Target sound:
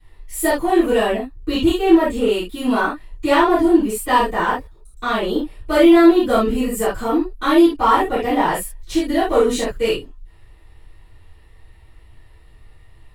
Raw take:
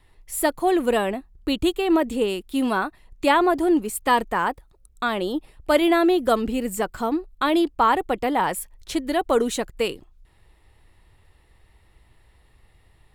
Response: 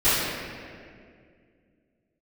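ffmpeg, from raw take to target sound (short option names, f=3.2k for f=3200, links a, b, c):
-filter_complex "[0:a]asplit=2[a][b];[b]asoftclip=type=hard:threshold=-22dB,volume=-7dB[c];[a][c]amix=inputs=2:normalize=0,asettb=1/sr,asplit=3[d][e][f];[d]atrim=end=6.424[g];[e]atrim=start=6.42:end=8.06,asetpts=PTS-STARTPTS,afade=t=in:d=0.004:c=qsin,afade=t=out:st=1.636:d=0.004:c=qsin,equalizer=f=11k:t=o:w=0.44:g=6[h];[f]atrim=start=8.056[i];[g][h]acrossfade=d=0.004:c1=hsin:c2=qsin[j];[j][i]acrossfade=d=0.004:c1=qsin:c2=hsin[k];[1:a]atrim=start_sample=2205,atrim=end_sample=3969[l];[k][l]afir=irnorm=-1:irlink=0,volume=-14dB"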